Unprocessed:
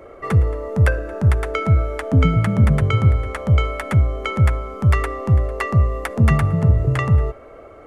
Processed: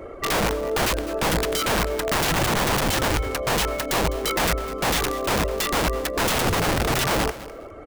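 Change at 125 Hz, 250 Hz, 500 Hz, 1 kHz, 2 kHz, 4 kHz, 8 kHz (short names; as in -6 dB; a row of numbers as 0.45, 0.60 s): -14.5 dB, -4.5 dB, +2.0 dB, +3.5 dB, +2.5 dB, +12.0 dB, n/a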